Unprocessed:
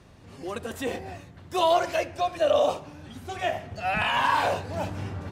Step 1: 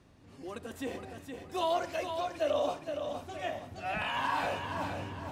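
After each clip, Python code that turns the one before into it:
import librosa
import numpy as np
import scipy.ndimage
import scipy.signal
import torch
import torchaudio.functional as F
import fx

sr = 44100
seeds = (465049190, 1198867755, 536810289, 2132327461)

y = fx.peak_eq(x, sr, hz=280.0, db=6.0, octaves=0.39)
y = fx.echo_feedback(y, sr, ms=467, feedback_pct=39, wet_db=-6.5)
y = F.gain(torch.from_numpy(y), -9.0).numpy()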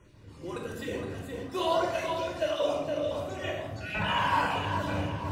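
y = fx.spec_dropout(x, sr, seeds[0], share_pct=20)
y = fx.room_shoebox(y, sr, seeds[1], volume_m3=2200.0, walls='furnished', distance_m=4.8)
y = F.gain(torch.from_numpy(y), 1.0).numpy()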